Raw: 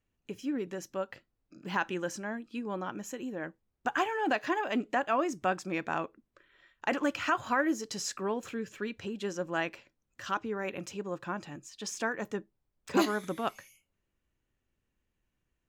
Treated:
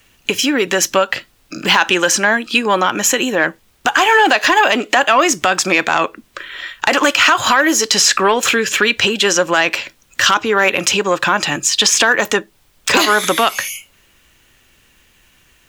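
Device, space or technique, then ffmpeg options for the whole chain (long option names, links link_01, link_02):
mastering chain: -filter_complex "[0:a]equalizer=frequency=3200:width_type=o:width=0.77:gain=3,acrossover=split=330|1400|3300[link_01][link_02][link_03][link_04];[link_01]acompressor=threshold=-46dB:ratio=4[link_05];[link_02]acompressor=threshold=-31dB:ratio=4[link_06];[link_03]acompressor=threshold=-42dB:ratio=4[link_07];[link_04]acompressor=threshold=-45dB:ratio=4[link_08];[link_05][link_06][link_07][link_08]amix=inputs=4:normalize=0,acompressor=threshold=-44dB:ratio=1.5,asoftclip=type=tanh:threshold=-28dB,tiltshelf=frequency=840:gain=-6.5,asoftclip=type=hard:threshold=-26.5dB,alimiter=level_in=30dB:limit=-1dB:release=50:level=0:latency=1,volume=-1dB"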